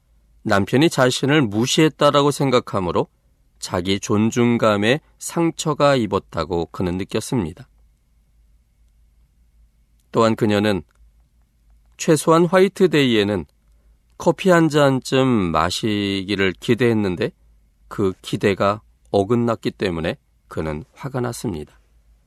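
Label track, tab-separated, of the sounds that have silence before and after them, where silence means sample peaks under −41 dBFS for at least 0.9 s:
10.140000	10.950000	sound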